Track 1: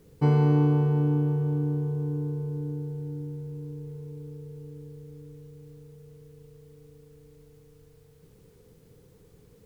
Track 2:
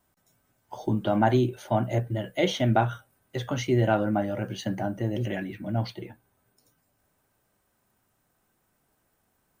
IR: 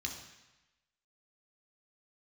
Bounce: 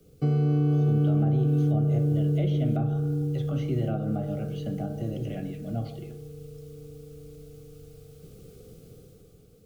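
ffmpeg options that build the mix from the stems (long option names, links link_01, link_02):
-filter_complex "[0:a]dynaudnorm=framelen=170:gausssize=9:maxgain=9dB,volume=-1dB[link_01];[1:a]bandreject=frequency=51.27:width_type=h:width=4,bandreject=frequency=102.54:width_type=h:width=4,bandreject=frequency=153.81:width_type=h:width=4,bandreject=frequency=205.08:width_type=h:width=4,bandreject=frequency=256.35:width_type=h:width=4,bandreject=frequency=307.62:width_type=h:width=4,bandreject=frequency=358.89:width_type=h:width=4,bandreject=frequency=410.16:width_type=h:width=4,bandreject=frequency=461.43:width_type=h:width=4,bandreject=frequency=512.7:width_type=h:width=4,bandreject=frequency=563.97:width_type=h:width=4,bandreject=frequency=615.24:width_type=h:width=4,bandreject=frequency=666.51:width_type=h:width=4,bandreject=frequency=717.78:width_type=h:width=4,bandreject=frequency=769.05:width_type=h:width=4,bandreject=frequency=820.32:width_type=h:width=4,bandreject=frequency=871.59:width_type=h:width=4,bandreject=frequency=922.86:width_type=h:width=4,bandreject=frequency=974.13:width_type=h:width=4,bandreject=frequency=1025.4:width_type=h:width=4,bandreject=frequency=1076.67:width_type=h:width=4,bandreject=frequency=1127.94:width_type=h:width=4,bandreject=frequency=1179.21:width_type=h:width=4,bandreject=frequency=1230.48:width_type=h:width=4,bandreject=frequency=1281.75:width_type=h:width=4,bandreject=frequency=1333.02:width_type=h:width=4,bandreject=frequency=1384.29:width_type=h:width=4,bandreject=frequency=1435.56:width_type=h:width=4,bandreject=frequency=1486.83:width_type=h:width=4,bandreject=frequency=1538.1:width_type=h:width=4,bandreject=frequency=1589.37:width_type=h:width=4,bandreject=frequency=1640.64:width_type=h:width=4,bandreject=frequency=1691.91:width_type=h:width=4,bandreject=frequency=1743.18:width_type=h:width=4,bandreject=frequency=1794.45:width_type=h:width=4,bandreject=frequency=1845.72:width_type=h:width=4,bandreject=frequency=1896.99:width_type=h:width=4,acrossover=split=2600[link_02][link_03];[link_03]acompressor=threshold=-54dB:ratio=4:attack=1:release=60[link_04];[link_02][link_04]amix=inputs=2:normalize=0,equalizer=frequency=1000:width=2:gain=7,volume=-5.5dB,asplit=2[link_05][link_06];[link_06]volume=-6.5dB[link_07];[2:a]atrim=start_sample=2205[link_08];[link_07][link_08]afir=irnorm=-1:irlink=0[link_09];[link_01][link_05][link_09]amix=inputs=3:normalize=0,equalizer=frequency=1800:width=2.9:gain=-11,acrossover=split=170|390|890[link_10][link_11][link_12][link_13];[link_10]acompressor=threshold=-25dB:ratio=4[link_14];[link_11]acompressor=threshold=-28dB:ratio=4[link_15];[link_12]acompressor=threshold=-39dB:ratio=4[link_16];[link_13]acompressor=threshold=-45dB:ratio=4[link_17];[link_14][link_15][link_16][link_17]amix=inputs=4:normalize=0,asuperstop=centerf=950:order=8:qfactor=3.1"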